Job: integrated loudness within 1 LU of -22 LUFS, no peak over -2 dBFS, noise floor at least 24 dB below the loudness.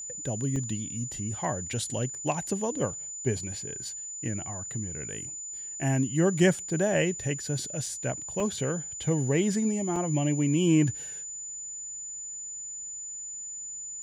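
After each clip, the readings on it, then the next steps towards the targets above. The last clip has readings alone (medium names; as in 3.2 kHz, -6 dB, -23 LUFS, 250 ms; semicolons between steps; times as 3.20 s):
dropouts 4; longest dropout 2.6 ms; steady tone 7 kHz; tone level -36 dBFS; loudness -29.5 LUFS; peak level -10.5 dBFS; loudness target -22.0 LUFS
-> interpolate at 0.56/7.86/8.40/9.96 s, 2.6 ms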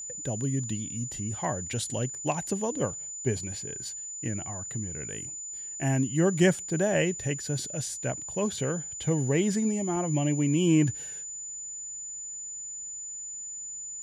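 dropouts 0; steady tone 7 kHz; tone level -36 dBFS
-> band-stop 7 kHz, Q 30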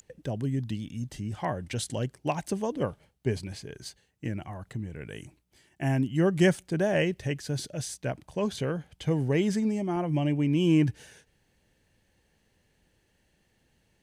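steady tone not found; loudness -29.5 LUFS; peak level -11.0 dBFS; loudness target -22.0 LUFS
-> trim +7.5 dB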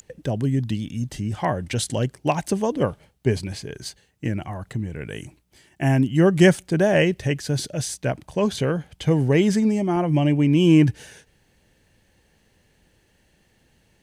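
loudness -22.0 LUFS; peak level -3.5 dBFS; noise floor -63 dBFS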